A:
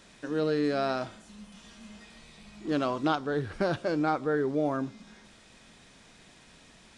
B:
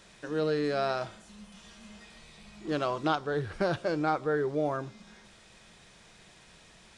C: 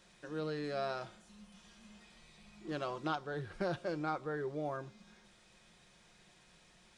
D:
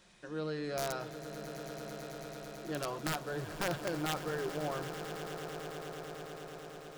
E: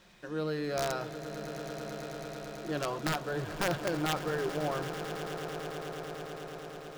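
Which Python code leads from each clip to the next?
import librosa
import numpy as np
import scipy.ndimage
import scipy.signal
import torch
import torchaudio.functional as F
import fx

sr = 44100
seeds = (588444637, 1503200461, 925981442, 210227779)

y1 = fx.peak_eq(x, sr, hz=260.0, db=-14.5, octaves=0.22)
y2 = y1 + 0.32 * np.pad(y1, (int(5.6 * sr / 1000.0), 0))[:len(y1)]
y2 = y2 * 10.0 ** (-8.5 / 20.0)
y3 = (np.mod(10.0 ** (27.5 / 20.0) * y2 + 1.0, 2.0) - 1.0) / 10.0 ** (27.5 / 20.0)
y3 = fx.echo_swell(y3, sr, ms=110, loudest=8, wet_db=-15)
y3 = y3 * 10.0 ** (1.0 / 20.0)
y4 = scipy.ndimage.median_filter(y3, 5, mode='constant')
y4 = y4 * 10.0 ** (4.0 / 20.0)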